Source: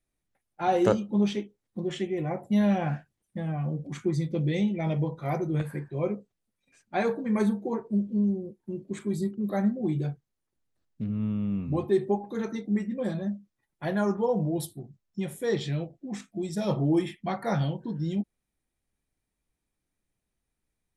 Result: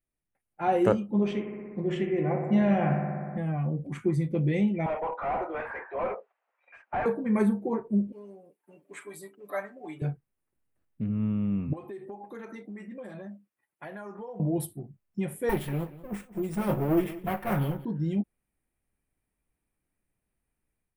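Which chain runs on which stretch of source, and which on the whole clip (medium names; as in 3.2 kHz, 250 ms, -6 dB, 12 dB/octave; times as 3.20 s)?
1.12–3.38 s: low-pass 7.2 kHz 24 dB/octave + bucket-brigade echo 61 ms, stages 1024, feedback 83%, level -8 dB
4.86–7.06 s: high-pass 690 Hz 24 dB/octave + overdrive pedal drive 32 dB, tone 1 kHz, clips at -18.5 dBFS + tape spacing loss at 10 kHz 31 dB
8.12–10.02 s: high-pass 760 Hz + comb 6.9 ms, depth 84%
11.73–14.40 s: high-pass 570 Hz 6 dB/octave + compression 8:1, threshold -38 dBFS
15.49–17.85 s: comb filter that takes the minimum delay 5.5 ms + feedback delay 186 ms, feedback 17%, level -17 dB + careless resampling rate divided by 3×, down none, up hold
whole clip: high-order bell 4.9 kHz -11 dB 1.3 oct; level rider gain up to 7.5 dB; trim -6.5 dB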